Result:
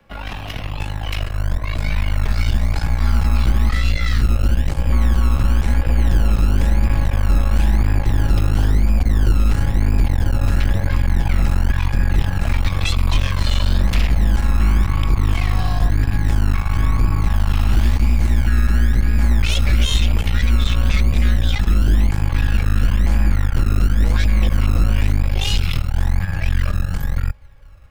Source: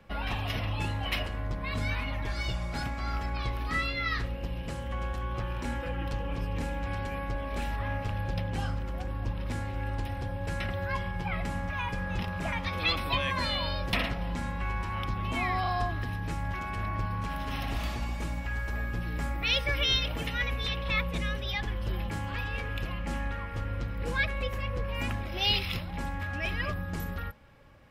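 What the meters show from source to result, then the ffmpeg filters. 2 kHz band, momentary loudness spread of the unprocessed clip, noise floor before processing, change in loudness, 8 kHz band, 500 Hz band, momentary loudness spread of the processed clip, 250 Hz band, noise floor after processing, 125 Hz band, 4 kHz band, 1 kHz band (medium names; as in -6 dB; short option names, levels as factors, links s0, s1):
+4.0 dB, 7 LU, -37 dBFS, +13.0 dB, +14.0 dB, +4.5 dB, 4 LU, +12.0 dB, -27 dBFS, +15.5 dB, +4.0 dB, +4.0 dB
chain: -filter_complex "[0:a]asubboost=boost=11.5:cutoff=64,asplit=2[s0][s1];[s1]alimiter=limit=0.15:level=0:latency=1:release=34,volume=1[s2];[s0][s2]amix=inputs=2:normalize=0,dynaudnorm=f=160:g=31:m=1.78,aeval=exprs='0.841*(cos(1*acos(clip(val(0)/0.841,-1,1)))-cos(1*PI/2))+0.133*(cos(8*acos(clip(val(0)/0.841,-1,1)))-cos(8*PI/2))':c=same,acrossover=split=170|2900[s3][s4][s5];[s3]acrusher=samples=26:mix=1:aa=0.000001:lfo=1:lforange=15.6:lforate=0.98[s6];[s6][s4][s5]amix=inputs=3:normalize=0,acrossover=split=330|3000[s7][s8][s9];[s8]acompressor=threshold=0.0631:ratio=6[s10];[s7][s10][s9]amix=inputs=3:normalize=0,volume=0.631"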